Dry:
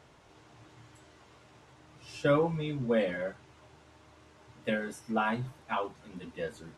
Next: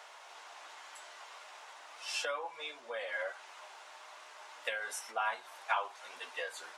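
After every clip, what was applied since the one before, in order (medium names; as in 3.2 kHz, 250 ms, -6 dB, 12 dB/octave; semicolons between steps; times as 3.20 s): compression 12:1, threshold -37 dBFS, peak gain reduction 16.5 dB; high-pass 680 Hz 24 dB/octave; trim +9.5 dB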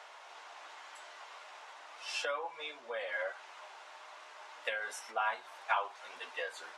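treble shelf 7.5 kHz -11 dB; trim +1 dB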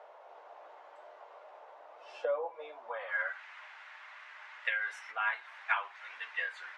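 band-pass sweep 540 Hz -> 1.9 kHz, 2.58–3.37 s; trim +7.5 dB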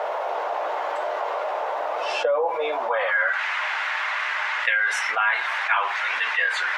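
level flattener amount 70%; trim +7.5 dB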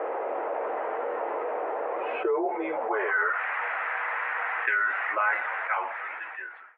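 fade out at the end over 1.43 s; mistuned SSB -130 Hz 460–2500 Hz; trim -3.5 dB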